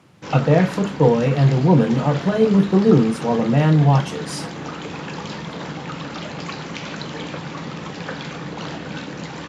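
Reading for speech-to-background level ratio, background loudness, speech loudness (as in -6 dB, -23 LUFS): 13.5 dB, -30.5 LUFS, -17.0 LUFS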